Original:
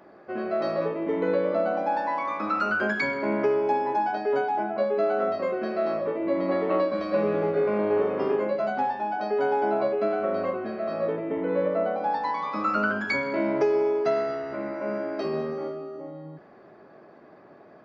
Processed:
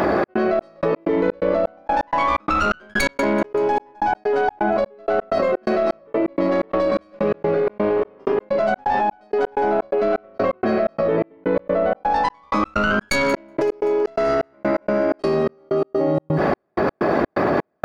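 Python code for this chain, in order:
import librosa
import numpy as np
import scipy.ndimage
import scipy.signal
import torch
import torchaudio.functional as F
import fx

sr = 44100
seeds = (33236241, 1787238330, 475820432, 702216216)

y = fx.tracing_dist(x, sr, depth_ms=0.15)
y = fx.peak_eq(y, sr, hz=64.0, db=12.0, octaves=0.5)
y = fx.echo_thinned(y, sr, ms=191, feedback_pct=67, hz=420.0, wet_db=-20)
y = fx.step_gate(y, sr, bpm=127, pattern='xx.xx..x.', floor_db=-60.0, edge_ms=4.5)
y = fx.env_flatten(y, sr, amount_pct=100)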